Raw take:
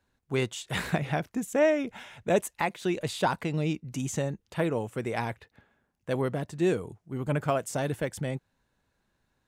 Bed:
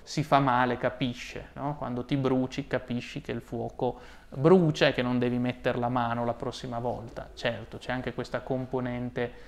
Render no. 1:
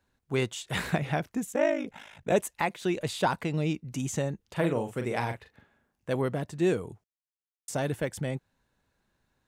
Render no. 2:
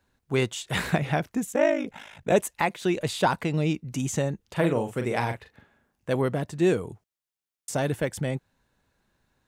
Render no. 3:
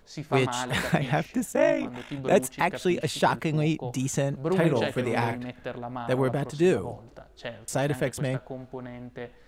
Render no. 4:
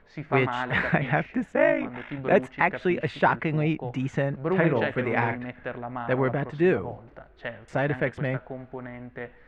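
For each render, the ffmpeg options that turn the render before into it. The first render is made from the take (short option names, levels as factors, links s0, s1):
-filter_complex "[0:a]asettb=1/sr,asplit=3[s0][s1][s2];[s0]atrim=end=1.514[s3];[s1]atrim=start=1.51:end=2.32,asetpts=PTS-STARTPTS,afade=t=in:d=0.004:c=qsin,afade=t=out:st=0.806:d=0.004:c=qsin,aeval=exprs='val(0)*sin(2*PI*26*n/s)':c=same[s4];[s2]atrim=start=2.316[s5];[s3][s4]acrossfade=d=0.004:c1=hsin:c2=qsin[s6];[s6][s5]acrossfade=d=0.004:c1=qsin:c2=hsin,asettb=1/sr,asplit=3[s7][s8][s9];[s7]atrim=end=4.434[s10];[s8]atrim=start=4.43:end=6.12,asetpts=PTS-STARTPTS,afade=t=in:d=0.004:c=qsin,afade=t=out:st=1.686:d=0.004:c=qsin,asplit=2[s11][s12];[s12]adelay=41,volume=0.447[s13];[s11][s13]amix=inputs=2:normalize=0,atrim=end_sample=74529[s14];[s9]atrim=start=6.116[s15];[s10][s14]acrossfade=d=0.004:c1=hsin:c2=qsin[s16];[s16][s15]acrossfade=d=0.004:c1=qsin:c2=hsin,asplit=3[s17][s18][s19];[s17]atrim=end=7.04,asetpts=PTS-STARTPTS,afade=t=out:st=7.036:d=0.004:c=hsin[s20];[s18]atrim=start=7.04:end=7.68,asetpts=PTS-STARTPTS,volume=0[s21];[s19]atrim=start=7.68,asetpts=PTS-STARTPTS,afade=t=in:d=0.004:c=hsin[s22];[s20][s21][s22]concat=n=3:v=0:a=1"
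-af "volume=1.5"
-filter_complex "[1:a]volume=0.422[s0];[0:a][s0]amix=inputs=2:normalize=0"
-af "lowpass=f=2000:t=q:w=1.9"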